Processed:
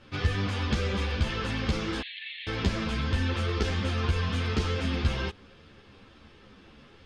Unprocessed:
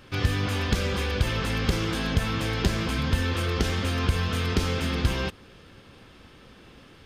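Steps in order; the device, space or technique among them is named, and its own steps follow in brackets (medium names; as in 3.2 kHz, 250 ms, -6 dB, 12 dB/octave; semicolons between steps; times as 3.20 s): 2.01–2.47 s: Chebyshev band-pass 1.8–4.2 kHz, order 5; string-machine ensemble chorus (three-phase chorus; low-pass 6.1 kHz 12 dB/octave)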